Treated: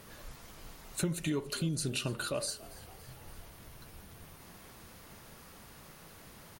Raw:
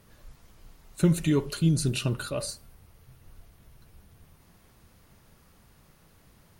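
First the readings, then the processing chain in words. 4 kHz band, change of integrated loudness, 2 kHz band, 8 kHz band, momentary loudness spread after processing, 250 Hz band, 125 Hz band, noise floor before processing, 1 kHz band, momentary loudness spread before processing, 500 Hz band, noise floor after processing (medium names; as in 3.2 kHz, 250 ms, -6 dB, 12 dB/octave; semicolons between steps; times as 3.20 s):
-2.0 dB, -8.0 dB, -2.0 dB, -2.0 dB, 18 LU, -9.5 dB, -11.0 dB, -60 dBFS, -2.0 dB, 10 LU, -6.5 dB, -54 dBFS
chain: bass shelf 180 Hz -9.5 dB; compression 3:1, threshold -44 dBFS, peak gain reduction 17.5 dB; on a send: frequency-shifting echo 283 ms, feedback 60%, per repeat +90 Hz, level -20 dB; on the sum: trim +8.5 dB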